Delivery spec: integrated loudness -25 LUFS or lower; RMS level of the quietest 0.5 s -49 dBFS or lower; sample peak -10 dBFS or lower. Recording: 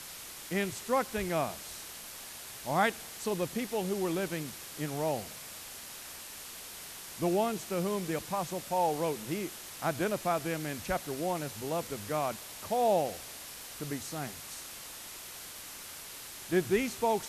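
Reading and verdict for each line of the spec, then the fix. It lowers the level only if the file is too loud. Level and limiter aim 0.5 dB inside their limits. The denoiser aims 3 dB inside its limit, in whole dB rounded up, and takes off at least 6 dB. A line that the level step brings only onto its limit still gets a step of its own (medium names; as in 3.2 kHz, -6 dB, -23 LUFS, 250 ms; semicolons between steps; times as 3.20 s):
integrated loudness -34.5 LUFS: pass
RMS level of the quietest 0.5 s -46 dBFS: fail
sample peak -15.0 dBFS: pass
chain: noise reduction 6 dB, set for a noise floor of -46 dBFS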